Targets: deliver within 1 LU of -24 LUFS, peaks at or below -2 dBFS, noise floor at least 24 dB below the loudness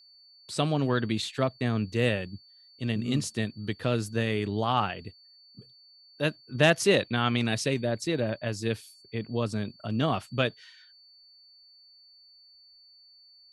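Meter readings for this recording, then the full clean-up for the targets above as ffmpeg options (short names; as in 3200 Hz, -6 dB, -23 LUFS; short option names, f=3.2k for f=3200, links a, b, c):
steady tone 4500 Hz; tone level -54 dBFS; loudness -28.5 LUFS; peak -7.0 dBFS; loudness target -24.0 LUFS
-> -af "bandreject=f=4.5k:w=30"
-af "volume=4.5dB"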